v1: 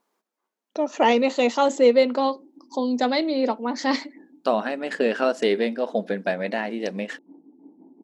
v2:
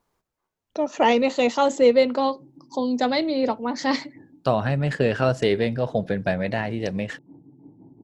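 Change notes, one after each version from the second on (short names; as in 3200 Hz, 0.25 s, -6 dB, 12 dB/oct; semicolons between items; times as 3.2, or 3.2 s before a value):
master: remove brick-wall FIR high-pass 190 Hz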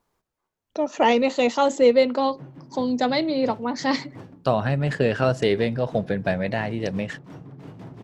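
background: remove vocal tract filter u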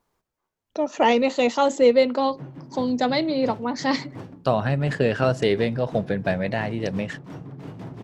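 background +3.5 dB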